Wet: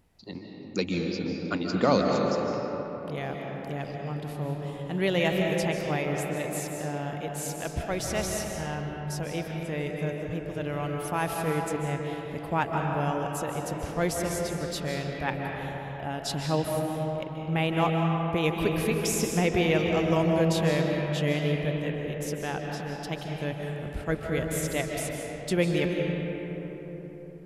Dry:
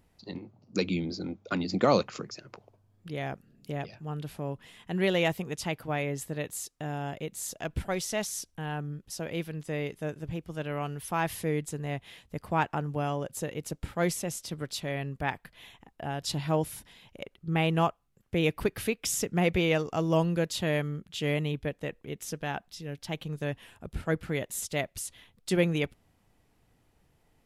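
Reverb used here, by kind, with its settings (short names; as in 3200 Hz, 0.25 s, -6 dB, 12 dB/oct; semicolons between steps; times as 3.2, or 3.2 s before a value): digital reverb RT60 4.4 s, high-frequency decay 0.4×, pre-delay 0.11 s, DRR 0.5 dB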